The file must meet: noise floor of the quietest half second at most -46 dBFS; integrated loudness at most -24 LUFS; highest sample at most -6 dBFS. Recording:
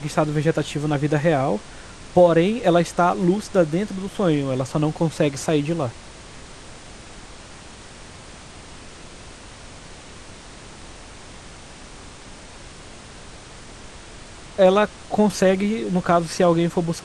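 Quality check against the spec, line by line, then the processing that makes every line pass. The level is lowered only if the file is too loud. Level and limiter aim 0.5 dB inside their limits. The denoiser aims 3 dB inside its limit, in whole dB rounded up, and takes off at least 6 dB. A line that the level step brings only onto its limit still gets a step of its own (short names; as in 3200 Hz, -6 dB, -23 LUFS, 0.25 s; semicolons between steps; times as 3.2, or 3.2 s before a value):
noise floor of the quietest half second -41 dBFS: fail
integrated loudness -20.5 LUFS: fail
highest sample -3.5 dBFS: fail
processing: denoiser 6 dB, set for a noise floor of -41 dBFS; gain -4 dB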